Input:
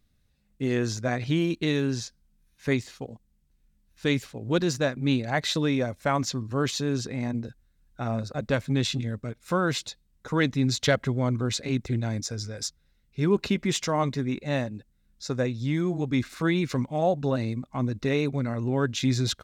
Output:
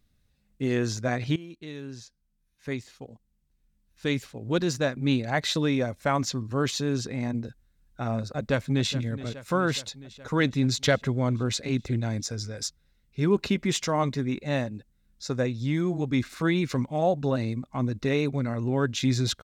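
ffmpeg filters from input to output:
ffmpeg -i in.wav -filter_complex "[0:a]asplit=2[link_01][link_02];[link_02]afade=type=in:start_time=8.36:duration=0.01,afade=type=out:start_time=8.91:duration=0.01,aecho=0:1:420|840|1260|1680|2100|2520|2940|3360|3780:0.188365|0.131855|0.0922988|0.0646092|0.0452264|0.0316585|0.0221609|0.0155127|0.0108589[link_03];[link_01][link_03]amix=inputs=2:normalize=0,asplit=2[link_04][link_05];[link_04]atrim=end=1.36,asetpts=PTS-STARTPTS,afade=type=out:start_time=1.356:duration=0.004:curve=hsin:silence=0.11885[link_06];[link_05]atrim=start=1.36,asetpts=PTS-STARTPTS,afade=type=in:duration=3.73:silence=0.11885[link_07];[link_06][link_07]concat=n=2:v=0:a=1" out.wav

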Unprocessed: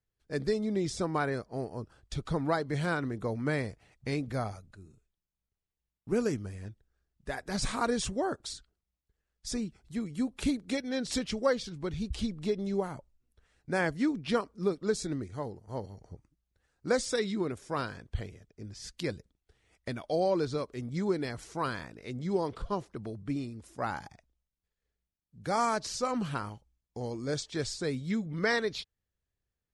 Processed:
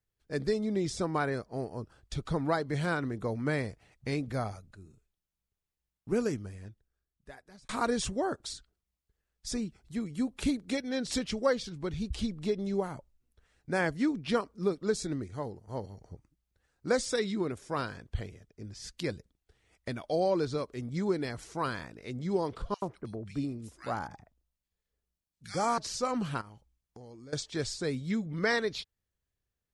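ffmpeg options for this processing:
ffmpeg -i in.wav -filter_complex "[0:a]asettb=1/sr,asplit=3[link_01][link_02][link_03];[link_01]atrim=end=22.744[link_04];[link_02]atrim=start=22.74:end=25.78,asetpts=PTS-STARTPTS,afade=type=in:duration=0.004:curve=qsin,afade=type=out:start_time=3.036:duration=0.004:curve=qsin,acrossover=split=1800[link_05][link_06];[link_05]adelay=80[link_07];[link_07][link_06]amix=inputs=2:normalize=0,atrim=end_sample=134064[link_08];[link_03]atrim=start=25.776[link_09];[link_04][link_08]acrossfade=duration=0.004:curve1=hsin:curve2=qsin[link_10];[link_10][link_09]acrossfade=duration=0.004:curve1=qsin:curve2=hsin,asettb=1/sr,asplit=3[link_11][link_12][link_13];[link_11]atrim=end=26.414[link_14];[link_12]atrim=start=26.41:end=27.33,asetpts=PTS-STARTPTS,afade=type=in:duration=0.004:curve=qsin,afade=type=out:start_time=0.916:duration=0.004:curve=qsin,acompressor=threshold=-46dB:ratio=10:attack=3.2:release=140:knee=1:detection=peak[link_15];[link_13]atrim=start=27.326[link_16];[link_14][link_15]acrossfade=duration=0.004:curve1=hsin:curve2=qsin[link_17];[link_17][link_16]acrossfade=duration=0.004:curve1=qsin:curve2=hsin,asplit=2[link_18][link_19];[link_18]atrim=end=7.69,asetpts=PTS-STARTPTS,afade=type=out:start_time=6.11:duration=1.58[link_20];[link_19]atrim=start=7.69,asetpts=PTS-STARTPTS,afade=type=in:duration=0.004:curve=hsin[link_21];[link_20][link_21]concat=n=2:v=0:a=1" out.wav

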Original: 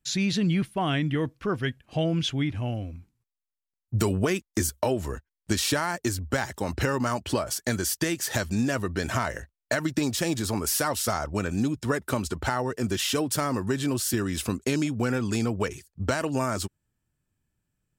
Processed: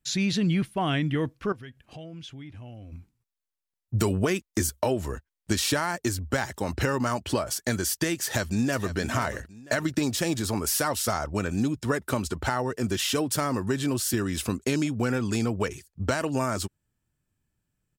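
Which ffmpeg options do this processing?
ffmpeg -i in.wav -filter_complex "[0:a]asettb=1/sr,asplit=3[link_01][link_02][link_03];[link_01]atrim=end=1.524[link_04];[link_02]atrim=start=1.52:end=2.92,asetpts=PTS-STARTPTS,afade=type=in:duration=0.004:curve=qsin,afade=type=out:start_time=1.396:duration=0.004:curve=qsin,acompressor=threshold=-44dB:ratio=3:attack=3.2:release=140:knee=1:detection=peak[link_05];[link_03]atrim=start=2.916[link_06];[link_04][link_05]acrossfade=duration=0.004:curve1=hsin:curve2=qsin[link_07];[link_07][link_06]acrossfade=duration=0.004:curve1=qsin:curve2=hsin,asplit=2[link_08][link_09];[link_09]afade=type=in:start_time=8.23:duration=0.01,afade=type=out:start_time=8.96:duration=0.01,aecho=0:1:490|980|1470|1960:0.237137|0.0829981|0.0290493|0.0101673[link_10];[link_08][link_10]amix=inputs=2:normalize=0" out.wav

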